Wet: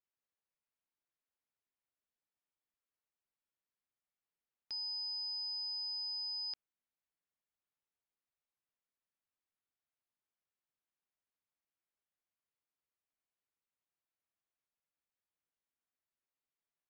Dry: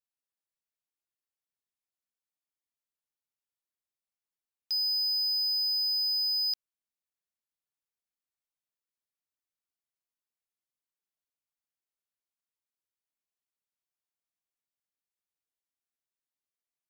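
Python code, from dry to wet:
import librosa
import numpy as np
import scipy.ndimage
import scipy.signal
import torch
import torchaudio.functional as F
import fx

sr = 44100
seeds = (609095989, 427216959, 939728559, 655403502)

y = scipy.signal.sosfilt(scipy.signal.butter(2, 2700.0, 'lowpass', fs=sr, output='sos'), x)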